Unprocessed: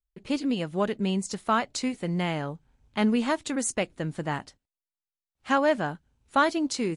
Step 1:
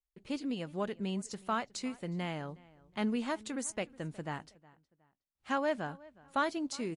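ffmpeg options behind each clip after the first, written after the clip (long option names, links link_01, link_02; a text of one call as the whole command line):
ffmpeg -i in.wav -filter_complex "[0:a]asplit=2[link_01][link_02];[link_02]adelay=365,lowpass=frequency=3300:poles=1,volume=-22dB,asplit=2[link_03][link_04];[link_04]adelay=365,lowpass=frequency=3300:poles=1,volume=0.33[link_05];[link_01][link_03][link_05]amix=inputs=3:normalize=0,volume=-9dB" out.wav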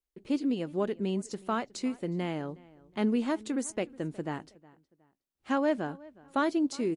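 ffmpeg -i in.wav -af "equalizer=frequency=340:width_type=o:width=1.3:gain=9.5" out.wav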